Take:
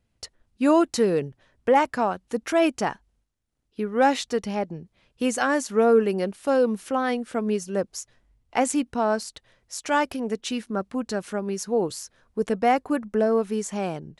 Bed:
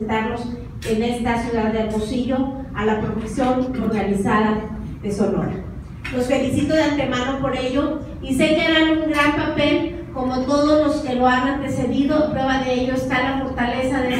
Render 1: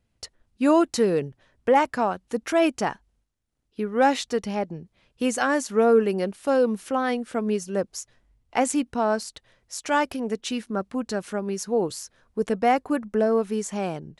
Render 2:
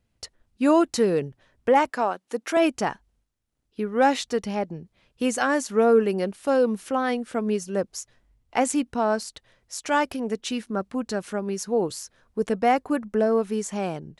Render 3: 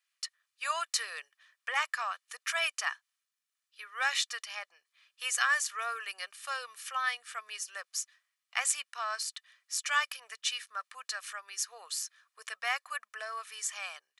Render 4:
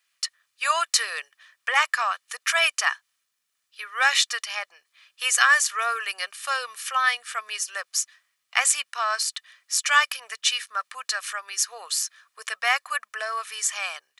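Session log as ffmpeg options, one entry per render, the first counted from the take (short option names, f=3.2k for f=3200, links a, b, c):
-af anull
-filter_complex "[0:a]asettb=1/sr,asplit=3[a][b][c];[a]atrim=end=1.904[d];[b]atrim=start=1.9:end=2.57,asetpts=PTS-STARTPTS,afade=t=in:d=0.004:c=qsin,afade=t=out:st=0.666:d=0.004:c=qsin,highpass=290[e];[c]atrim=start=2.566[f];[d][e]acrossfade=d=0.004:c1=hsin:c2=qsin[g];[g][f]acrossfade=d=0.004:c1=qsin:c2=hsin"
-af "highpass=f=1.3k:w=0.5412,highpass=f=1.3k:w=1.3066,aecho=1:1:1.7:0.47"
-af "volume=10dB,alimiter=limit=-3dB:level=0:latency=1"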